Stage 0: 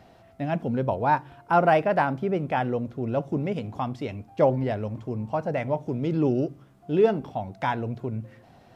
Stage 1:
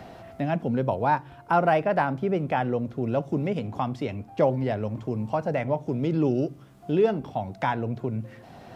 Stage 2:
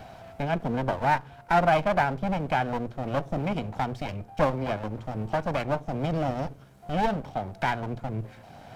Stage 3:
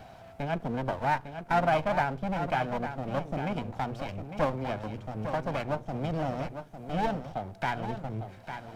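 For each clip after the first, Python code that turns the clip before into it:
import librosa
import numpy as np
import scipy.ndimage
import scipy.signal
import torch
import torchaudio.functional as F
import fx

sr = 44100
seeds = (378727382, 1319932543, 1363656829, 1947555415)

y1 = fx.band_squash(x, sr, depth_pct=40)
y2 = fx.lower_of_two(y1, sr, delay_ms=1.3)
y3 = y2 + 10.0 ** (-9.0 / 20.0) * np.pad(y2, (int(853 * sr / 1000.0), 0))[:len(y2)]
y3 = F.gain(torch.from_numpy(y3), -4.0).numpy()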